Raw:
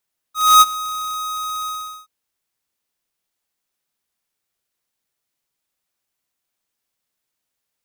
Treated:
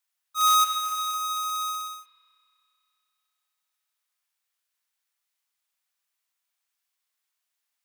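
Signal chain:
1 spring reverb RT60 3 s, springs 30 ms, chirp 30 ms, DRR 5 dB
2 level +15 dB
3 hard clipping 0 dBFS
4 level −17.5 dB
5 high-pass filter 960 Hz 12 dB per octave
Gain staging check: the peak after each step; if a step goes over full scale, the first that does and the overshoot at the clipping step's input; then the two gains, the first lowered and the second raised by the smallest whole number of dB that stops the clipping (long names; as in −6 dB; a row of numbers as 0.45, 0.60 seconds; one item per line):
−6.0, +9.0, 0.0, −17.5, −11.0 dBFS
step 2, 9.0 dB
step 2 +6 dB, step 4 −8.5 dB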